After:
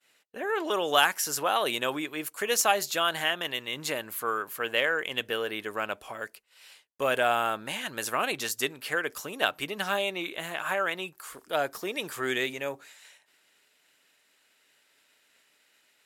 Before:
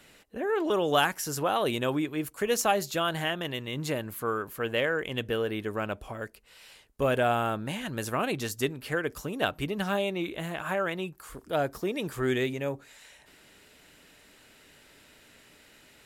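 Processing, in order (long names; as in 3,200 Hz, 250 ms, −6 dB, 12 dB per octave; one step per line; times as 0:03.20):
downward expander −47 dBFS
high-pass filter 1,000 Hz 6 dB per octave
level +5 dB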